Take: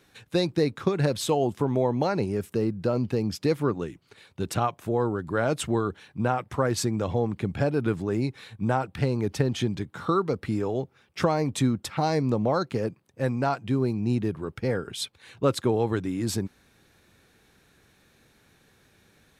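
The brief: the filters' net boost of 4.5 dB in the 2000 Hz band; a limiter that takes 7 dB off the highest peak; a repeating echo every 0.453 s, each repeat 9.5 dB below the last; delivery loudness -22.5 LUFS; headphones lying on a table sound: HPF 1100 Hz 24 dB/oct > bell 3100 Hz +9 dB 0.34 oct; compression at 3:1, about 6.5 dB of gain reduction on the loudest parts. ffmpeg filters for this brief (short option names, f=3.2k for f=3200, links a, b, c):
-af "equalizer=f=2k:t=o:g=5.5,acompressor=threshold=-27dB:ratio=3,alimiter=limit=-20.5dB:level=0:latency=1,highpass=f=1.1k:w=0.5412,highpass=f=1.1k:w=1.3066,equalizer=f=3.1k:t=o:w=0.34:g=9,aecho=1:1:453|906|1359|1812:0.335|0.111|0.0365|0.012,volume=15.5dB"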